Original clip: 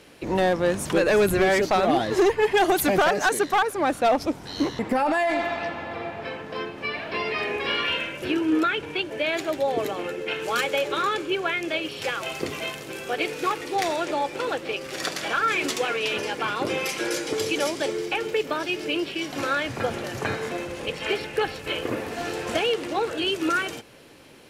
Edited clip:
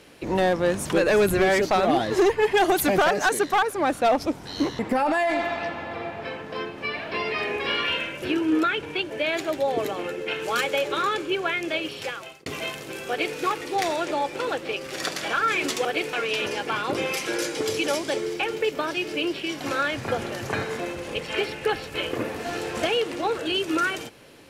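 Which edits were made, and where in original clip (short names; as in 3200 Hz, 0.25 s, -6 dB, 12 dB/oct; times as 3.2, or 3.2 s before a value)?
11.89–12.46 fade out
13.09–13.37 copy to 15.85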